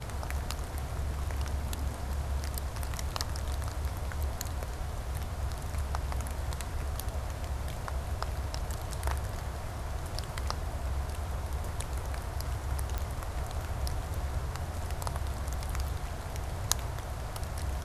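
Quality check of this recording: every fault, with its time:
12.98 pop -19 dBFS

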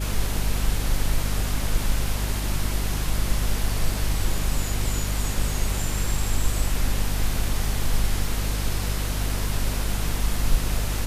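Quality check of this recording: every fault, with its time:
hum 50 Hz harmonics 5 -27 dBFS

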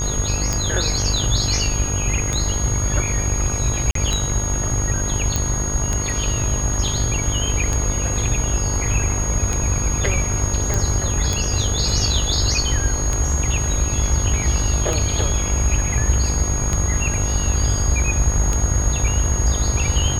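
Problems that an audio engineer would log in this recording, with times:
buzz 50 Hz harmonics 40 -25 dBFS
tick 33 1/3 rpm -7 dBFS
tone 6600 Hz -24 dBFS
3.91–3.95 gap 43 ms
5.36 pop
10.74 pop

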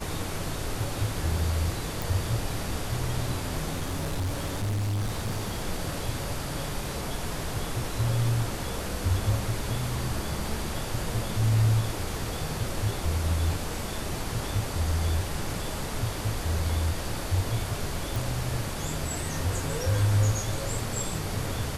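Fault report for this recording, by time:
2.02 pop
3.75–5.64 clipped -25.5 dBFS
18.16 pop

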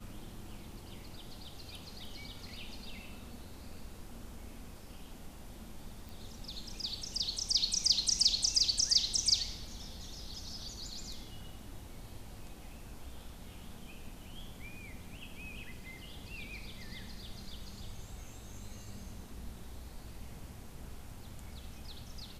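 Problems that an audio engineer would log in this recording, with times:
6.09 pop

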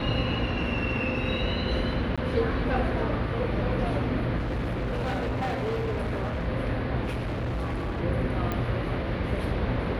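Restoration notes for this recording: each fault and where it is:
2.16–2.18 gap 16 ms
4.38–6.48 clipped -25.5 dBFS
7.03–8.01 clipped -26.5 dBFS
8.52 pop -16 dBFS

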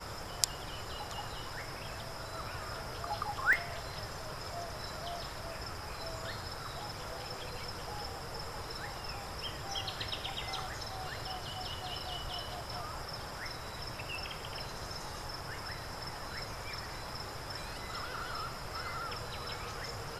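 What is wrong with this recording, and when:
3.53 pop -18 dBFS

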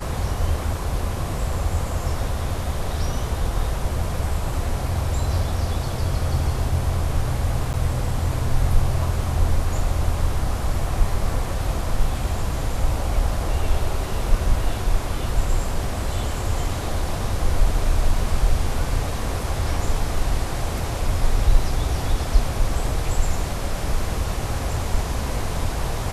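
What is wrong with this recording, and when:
7.73–7.74 gap 9.1 ms

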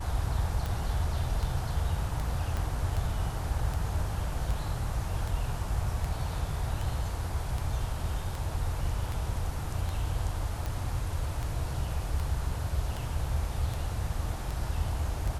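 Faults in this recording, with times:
tick 78 rpm
2.57 pop -20 dBFS

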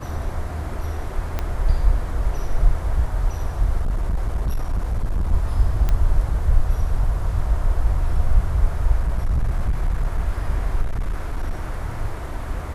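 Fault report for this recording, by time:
1.39 pop -11 dBFS
3.8–5.33 clipped -17.5 dBFS
5.89 pop -10 dBFS
8.99–10.19 clipped -16 dBFS
10.81–11.77 clipped -19 dBFS

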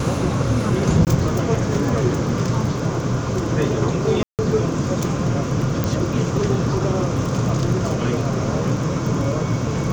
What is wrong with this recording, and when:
crackle 18/s -26 dBFS
1.05–1.07 gap 18 ms
4.23–4.39 gap 0.158 s
5.84 pop -7 dBFS

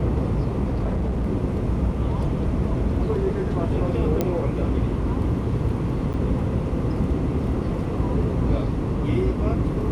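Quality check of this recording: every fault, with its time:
0.65–1.27 clipped -20 dBFS
4.21 pop -9 dBFS
6.13–6.14 gap 8.9 ms

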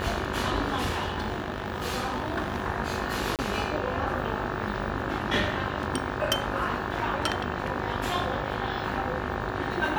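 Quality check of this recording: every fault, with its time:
buzz 50 Hz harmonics 36 -34 dBFS
0.75–2.62 clipped -23.5 dBFS
3.36–3.39 gap 28 ms

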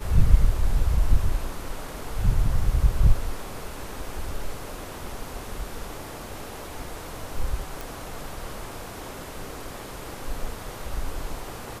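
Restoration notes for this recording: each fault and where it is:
7.81 pop

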